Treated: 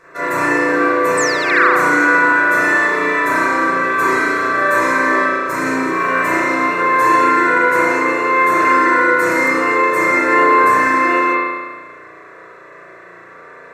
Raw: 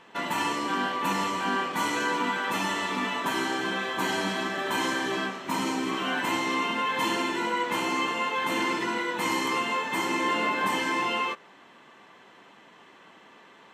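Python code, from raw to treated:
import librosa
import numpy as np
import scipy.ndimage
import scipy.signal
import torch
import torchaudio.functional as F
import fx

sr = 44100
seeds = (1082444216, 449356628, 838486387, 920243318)

y = fx.spec_paint(x, sr, seeds[0], shape='fall', start_s=1.17, length_s=0.57, low_hz=710.0, high_hz=8600.0, level_db=-28.0)
y = fx.fixed_phaser(y, sr, hz=840.0, stages=6)
y = fx.rev_spring(y, sr, rt60_s=1.4, pass_ms=(34,), chirp_ms=50, drr_db=-10.0)
y = y * librosa.db_to_amplitude(7.0)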